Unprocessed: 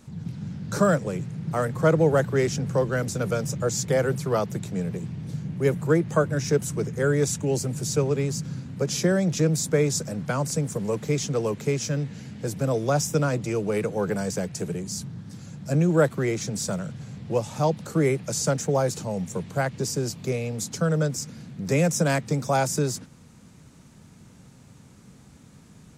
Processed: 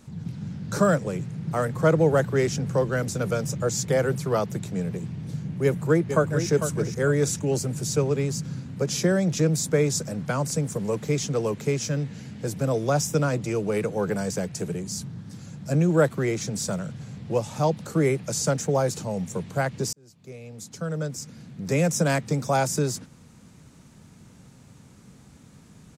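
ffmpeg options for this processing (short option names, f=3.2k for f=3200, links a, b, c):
-filter_complex "[0:a]asplit=2[a][b];[b]afade=t=in:st=5.64:d=0.01,afade=t=out:st=6.49:d=0.01,aecho=0:1:450|900|1350|1800:0.375837|0.112751|0.0338254|0.0101476[c];[a][c]amix=inputs=2:normalize=0,asplit=2[d][e];[d]atrim=end=19.93,asetpts=PTS-STARTPTS,afade=t=out:st=19.926:d=0.004:c=hsin[f];[e]atrim=start=19.93,asetpts=PTS-STARTPTS,afade=t=in:d=2.06[g];[f][g]concat=n=2:v=0:a=1"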